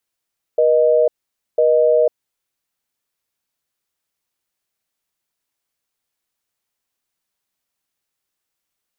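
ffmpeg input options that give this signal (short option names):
-f lavfi -i "aevalsrc='0.211*(sin(2*PI*480*t)+sin(2*PI*620*t))*clip(min(mod(t,1),0.5-mod(t,1))/0.005,0,1)':d=1.69:s=44100"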